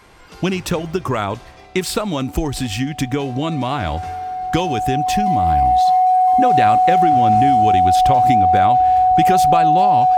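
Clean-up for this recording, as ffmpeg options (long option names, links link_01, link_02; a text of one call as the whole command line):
ffmpeg -i in.wav -af "bandreject=frequency=740:width=30" out.wav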